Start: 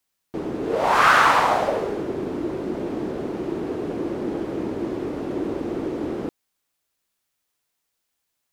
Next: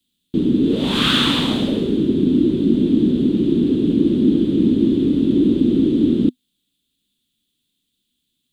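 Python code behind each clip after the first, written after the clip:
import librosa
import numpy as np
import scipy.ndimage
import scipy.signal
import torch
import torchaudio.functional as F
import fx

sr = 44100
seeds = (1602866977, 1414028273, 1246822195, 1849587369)

y = fx.curve_eq(x, sr, hz=(110.0, 250.0, 720.0, 2200.0, 3500.0, 5400.0, 8400.0, 13000.0), db=(0, 10, -25, -14, 8, -14, -6, -10))
y = y * librosa.db_to_amplitude(9.0)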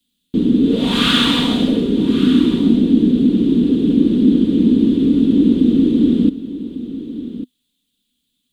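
y = x + 0.45 * np.pad(x, (int(4.2 * sr / 1000.0), 0))[:len(x)]
y = y + 10.0 ** (-13.5 / 20.0) * np.pad(y, (int(1148 * sr / 1000.0), 0))[:len(y)]
y = y * librosa.db_to_amplitude(1.0)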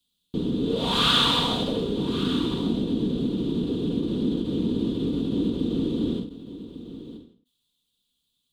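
y = fx.graphic_eq(x, sr, hz=(125, 250, 500, 1000, 2000, 4000), db=(6, -11, 3, 7, -7, 4))
y = fx.end_taper(y, sr, db_per_s=110.0)
y = y * librosa.db_to_amplitude(-5.5)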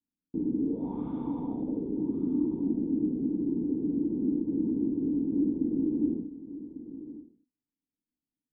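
y = fx.formant_cascade(x, sr, vowel='u')
y = y * librosa.db_to_amplitude(1.5)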